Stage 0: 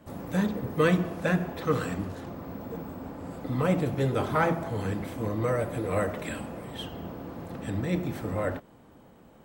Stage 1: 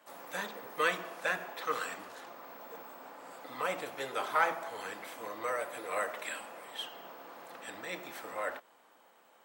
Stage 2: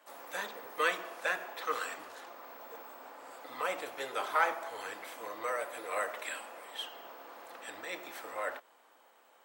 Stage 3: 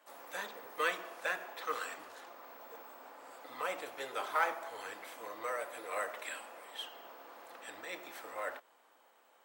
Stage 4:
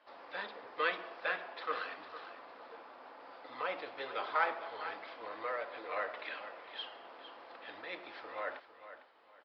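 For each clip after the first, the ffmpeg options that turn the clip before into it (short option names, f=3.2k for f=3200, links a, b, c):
-af "highpass=840"
-af "equalizer=f=160:t=o:w=0.84:g=-14"
-af "acrusher=bits=7:mode=log:mix=0:aa=0.000001,volume=-3dB"
-af "aecho=1:1:454|908|1362:0.237|0.0664|0.0186,aresample=11025,aresample=44100"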